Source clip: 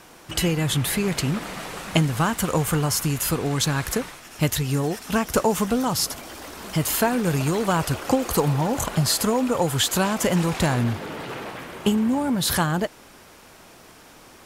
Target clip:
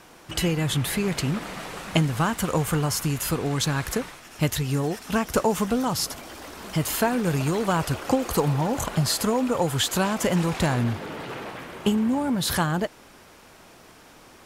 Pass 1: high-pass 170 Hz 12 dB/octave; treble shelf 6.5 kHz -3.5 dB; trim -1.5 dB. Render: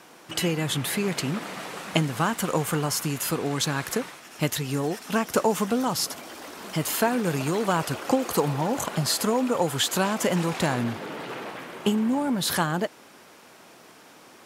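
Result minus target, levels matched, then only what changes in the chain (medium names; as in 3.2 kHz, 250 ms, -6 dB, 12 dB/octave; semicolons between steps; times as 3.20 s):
125 Hz band -3.0 dB
remove: high-pass 170 Hz 12 dB/octave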